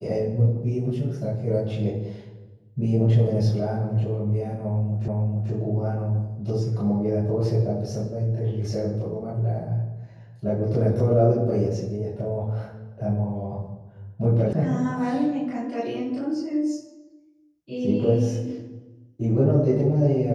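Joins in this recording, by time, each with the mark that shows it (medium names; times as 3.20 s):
5.08 s: repeat of the last 0.44 s
14.53 s: sound stops dead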